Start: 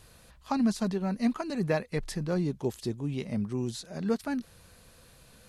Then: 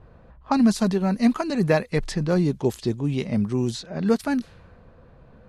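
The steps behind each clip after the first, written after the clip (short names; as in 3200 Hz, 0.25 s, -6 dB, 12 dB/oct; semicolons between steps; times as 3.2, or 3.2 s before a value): low-pass opened by the level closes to 900 Hz, open at -27 dBFS; gain +8 dB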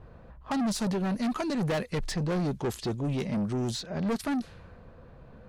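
soft clip -25.5 dBFS, distortion -6 dB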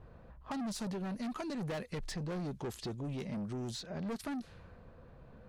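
compressor 2.5:1, threshold -34 dBFS, peak gain reduction 5 dB; gain -5 dB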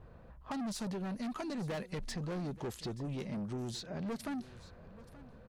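echo 0.879 s -18 dB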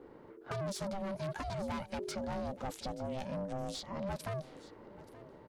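ring modulator 390 Hz; gain +3 dB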